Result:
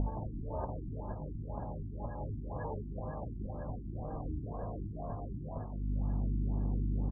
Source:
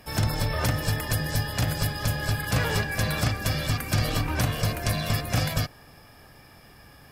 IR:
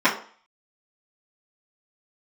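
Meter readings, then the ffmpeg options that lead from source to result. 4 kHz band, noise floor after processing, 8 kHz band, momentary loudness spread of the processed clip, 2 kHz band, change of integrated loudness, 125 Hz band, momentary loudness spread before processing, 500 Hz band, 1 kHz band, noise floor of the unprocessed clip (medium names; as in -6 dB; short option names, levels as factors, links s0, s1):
under -40 dB, -42 dBFS, under -40 dB, 7 LU, -31.0 dB, -13.0 dB, -11.5 dB, 2 LU, -10.0 dB, -12.0 dB, -52 dBFS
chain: -filter_complex "[0:a]tiltshelf=f=970:g=-9.5,aeval=exprs='val(0)+0.0126*(sin(2*PI*50*n/s)+sin(2*PI*2*50*n/s)/2+sin(2*PI*3*50*n/s)/3+sin(2*PI*4*50*n/s)/4+sin(2*PI*5*50*n/s)/5)':c=same,asuperstop=centerf=1400:order=4:qfactor=1.2,equalizer=f=130:w=5.1:g=-7,acompressor=threshold=0.00708:ratio=8,asplit=8[s0][s1][s2][s3][s4][s5][s6][s7];[s1]adelay=164,afreqshift=88,volume=0.224[s8];[s2]adelay=328,afreqshift=176,volume=0.136[s9];[s3]adelay=492,afreqshift=264,volume=0.0832[s10];[s4]adelay=656,afreqshift=352,volume=0.0507[s11];[s5]adelay=820,afreqshift=440,volume=0.0309[s12];[s6]adelay=984,afreqshift=528,volume=0.0188[s13];[s7]adelay=1148,afreqshift=616,volume=0.0115[s14];[s0][s8][s9][s10][s11][s12][s13][s14]amix=inputs=8:normalize=0,afftfilt=real='re*lt(b*sr/1024,360*pow(1700/360,0.5+0.5*sin(2*PI*2*pts/sr)))':imag='im*lt(b*sr/1024,360*pow(1700/360,0.5+0.5*sin(2*PI*2*pts/sr)))':win_size=1024:overlap=0.75,volume=5.01"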